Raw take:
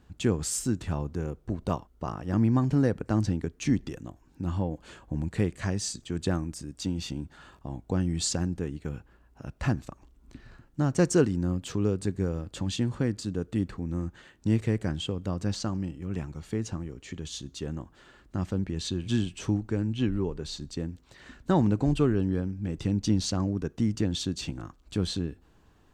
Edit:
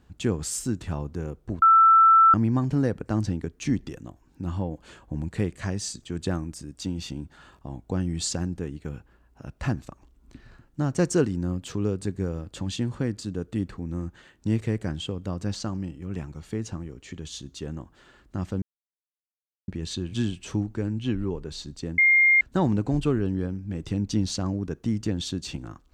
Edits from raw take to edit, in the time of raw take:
1.62–2.34 bleep 1330 Hz -12 dBFS
18.62 insert silence 1.06 s
20.92–21.35 bleep 2120 Hz -14.5 dBFS

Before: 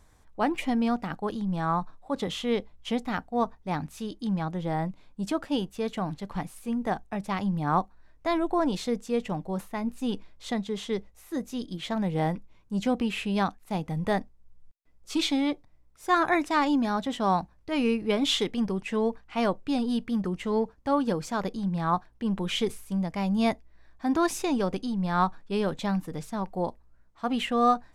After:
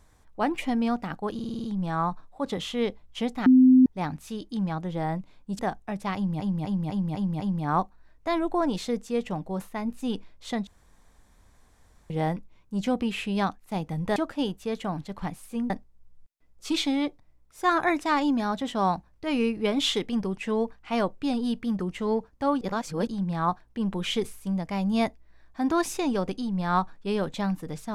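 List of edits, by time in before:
1.34 stutter 0.05 s, 7 plays
3.16–3.56 bleep 257 Hz -12 dBFS
5.29–6.83 move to 14.15
7.39–7.64 loop, 6 plays
10.66–12.09 room tone
21.06–21.52 reverse

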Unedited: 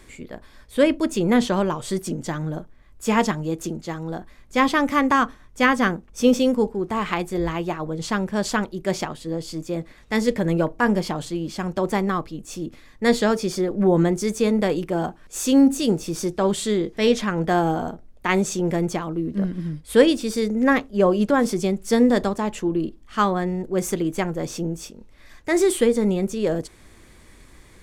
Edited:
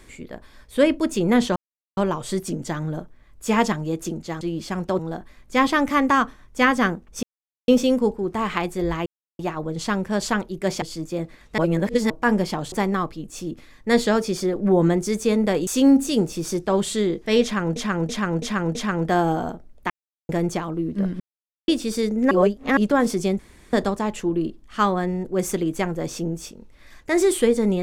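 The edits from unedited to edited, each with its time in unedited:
1.56 insert silence 0.41 s
6.24 insert silence 0.45 s
7.62 insert silence 0.33 s
9.05–9.39 cut
10.15–10.67 reverse
11.29–11.87 move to 4
14.82–15.38 cut
17.14–17.47 loop, 5 plays
18.29–18.68 mute
19.59–20.07 mute
20.7–21.16 reverse
21.78–22.12 room tone

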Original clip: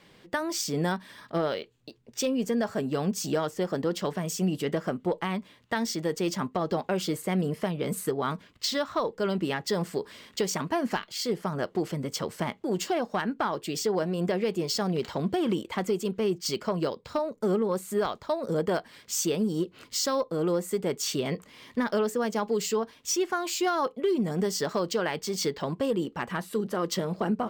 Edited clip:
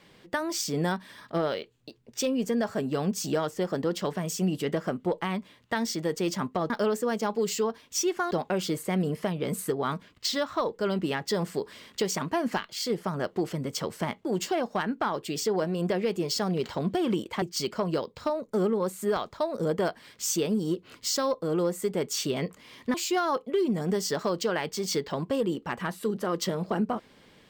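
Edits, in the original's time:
15.81–16.31 cut
21.83–23.44 move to 6.7

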